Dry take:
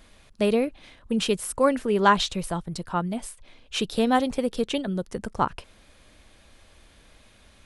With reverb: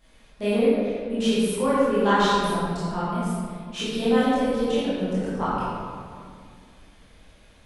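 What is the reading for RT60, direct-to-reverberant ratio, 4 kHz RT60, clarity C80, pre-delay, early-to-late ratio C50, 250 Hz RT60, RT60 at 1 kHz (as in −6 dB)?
2.1 s, −12.0 dB, 1.2 s, −1.5 dB, 17 ms, −4.5 dB, 2.7 s, 2.0 s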